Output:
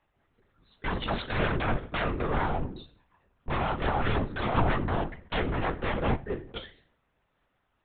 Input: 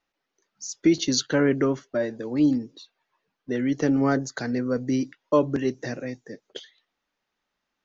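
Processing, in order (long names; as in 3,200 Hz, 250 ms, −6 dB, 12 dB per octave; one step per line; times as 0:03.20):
high-shelf EQ 2,600 Hz −10.5 dB
downward compressor 8 to 1, threshold −24 dBFS, peak gain reduction 10 dB
wave folding −31.5 dBFS
convolution reverb RT60 0.45 s, pre-delay 6 ms, DRR 5.5 dB
linear-prediction vocoder at 8 kHz whisper
level +7 dB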